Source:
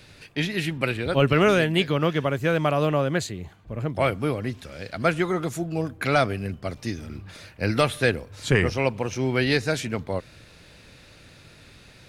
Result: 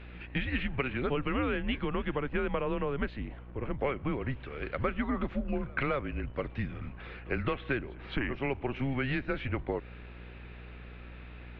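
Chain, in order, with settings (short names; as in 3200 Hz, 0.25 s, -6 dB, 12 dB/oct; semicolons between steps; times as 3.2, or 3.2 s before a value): compressor 10:1, threshold -26 dBFS, peak gain reduction 12.5 dB; mistuned SSB -130 Hz 150–3000 Hz; on a send: reverse echo 0.223 s -24 dB; on the sum: speed mistake 24 fps film run at 25 fps; buzz 60 Hz, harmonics 34, -47 dBFS -8 dB/oct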